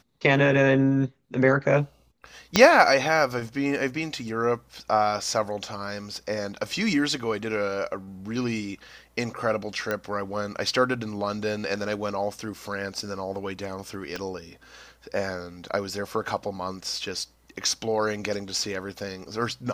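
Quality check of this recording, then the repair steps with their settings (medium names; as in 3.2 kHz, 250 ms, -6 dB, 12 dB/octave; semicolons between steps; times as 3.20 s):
2.56 s: pop -3 dBFS
9.91 s: pop -14 dBFS
14.16 s: pop -17 dBFS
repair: de-click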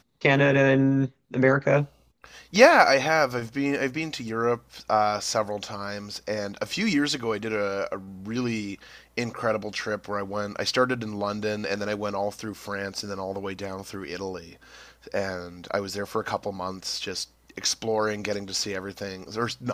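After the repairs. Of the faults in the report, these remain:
2.56 s: pop
14.16 s: pop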